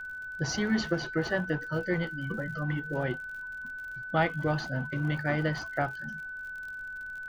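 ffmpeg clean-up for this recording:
ffmpeg -i in.wav -af "adeclick=threshold=4,bandreject=frequency=1500:width=30,agate=range=-21dB:threshold=-32dB" out.wav

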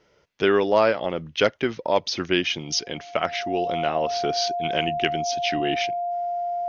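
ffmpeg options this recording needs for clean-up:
ffmpeg -i in.wav -af "bandreject=frequency=700:width=30" out.wav

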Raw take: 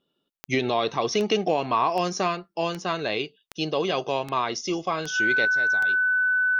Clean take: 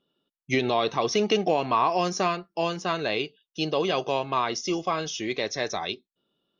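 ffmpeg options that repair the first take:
ffmpeg -i in.wav -af "adeclick=threshold=4,bandreject=frequency=1500:width=30,asetnsamples=nb_out_samples=441:pad=0,asendcmd='5.45 volume volume 10dB',volume=0dB" out.wav

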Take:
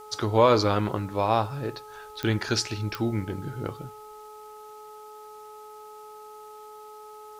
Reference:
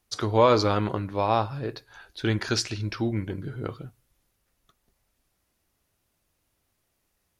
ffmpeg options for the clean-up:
ffmpeg -i in.wav -af "adeclick=threshold=4,bandreject=frequency=425.8:width_type=h:width=4,bandreject=frequency=851.6:width_type=h:width=4,bandreject=frequency=1277.4:width_type=h:width=4,agate=range=-21dB:threshold=-37dB,asetnsamples=nb_out_samples=441:pad=0,asendcmd='4.6 volume volume 12dB',volume=0dB" out.wav

